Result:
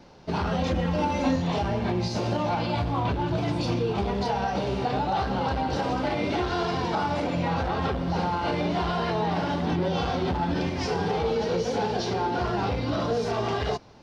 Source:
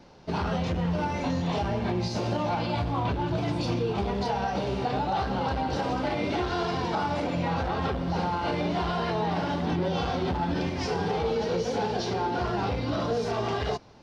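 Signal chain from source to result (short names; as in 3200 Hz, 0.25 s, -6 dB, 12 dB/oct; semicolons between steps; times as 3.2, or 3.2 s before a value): 0.58–1.36 comb 3.7 ms, depth 86%; gain +1.5 dB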